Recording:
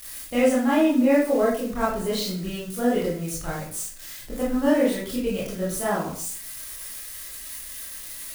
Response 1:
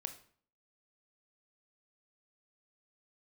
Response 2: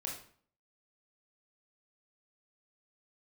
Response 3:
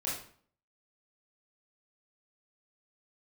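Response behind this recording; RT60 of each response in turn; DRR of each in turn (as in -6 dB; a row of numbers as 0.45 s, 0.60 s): 3; 0.50 s, 0.50 s, 0.50 s; 7.0 dB, -2.0 dB, -7.5 dB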